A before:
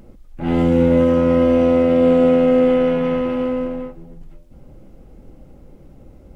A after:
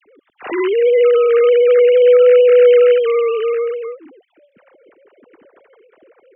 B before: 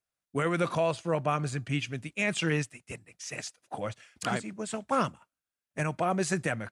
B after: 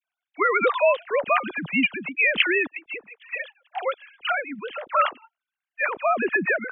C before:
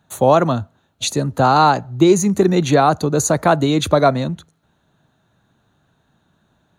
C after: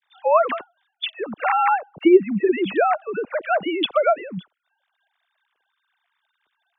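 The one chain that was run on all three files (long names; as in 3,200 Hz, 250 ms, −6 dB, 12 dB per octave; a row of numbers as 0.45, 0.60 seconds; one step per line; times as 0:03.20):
three sine waves on the formant tracks
tilt shelving filter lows −6.5 dB, about 1,200 Hz
all-pass dispersion lows, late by 46 ms, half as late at 1,400 Hz
normalise the peak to −3 dBFS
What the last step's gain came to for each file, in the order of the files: +8.5, +8.5, −1.0 decibels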